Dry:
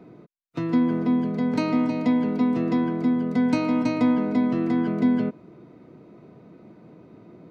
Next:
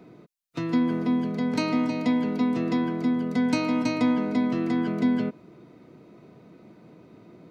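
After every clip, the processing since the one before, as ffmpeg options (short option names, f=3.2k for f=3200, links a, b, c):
-af "highshelf=f=2.4k:g=9,volume=-2.5dB"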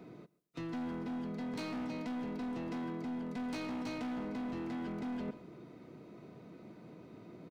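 -af "asoftclip=type=hard:threshold=-25.5dB,aecho=1:1:135|270:0.0668|0.0187,areverse,acompressor=threshold=-36dB:ratio=6,areverse,volume=-2.5dB"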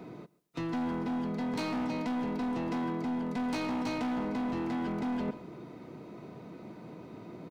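-af "equalizer=f=900:w=2.8:g=4.5,volume=6dB"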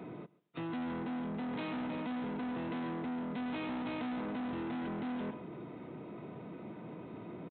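-af "aresample=8000,asoftclip=type=tanh:threshold=-37dB,aresample=44100,highpass=70,volume=1dB"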